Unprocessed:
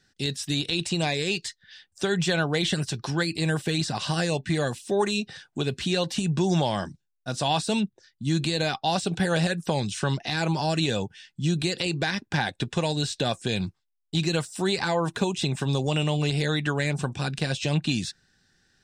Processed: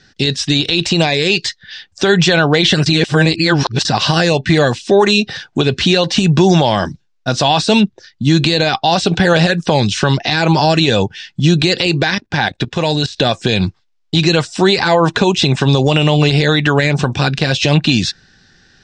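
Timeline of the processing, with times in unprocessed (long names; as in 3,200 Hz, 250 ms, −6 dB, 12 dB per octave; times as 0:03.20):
0:02.86–0:03.85: reverse
0:12.15–0:13.17: output level in coarse steps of 15 dB
whole clip: dynamic equaliser 170 Hz, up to −3 dB, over −37 dBFS, Q 1.2; low-pass filter 6,100 Hz 24 dB per octave; boost into a limiter +17.5 dB; level −1 dB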